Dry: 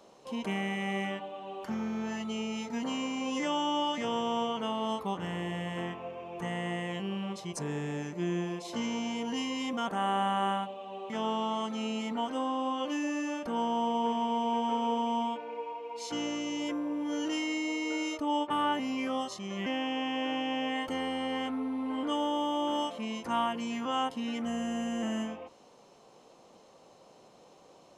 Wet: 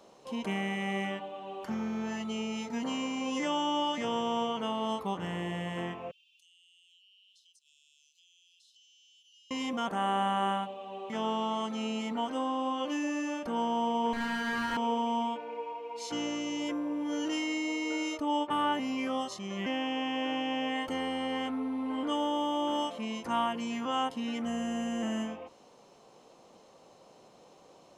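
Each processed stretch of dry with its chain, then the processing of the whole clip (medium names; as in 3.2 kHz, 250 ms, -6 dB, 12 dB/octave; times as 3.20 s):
6.11–9.51 s: steep high-pass 2.8 kHz 96 dB/octave + compression, threshold -58 dBFS + treble shelf 6.2 kHz -9 dB
14.13–14.77 s: comb filter that takes the minimum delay 0.76 ms + flutter echo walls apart 6 m, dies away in 0.76 s
whole clip: none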